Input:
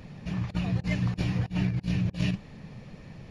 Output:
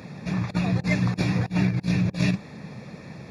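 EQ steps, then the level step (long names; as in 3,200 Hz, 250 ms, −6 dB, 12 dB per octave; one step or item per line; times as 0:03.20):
Bessel high-pass filter 160 Hz, order 2
Butterworth band-reject 3,000 Hz, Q 4.9
+8.0 dB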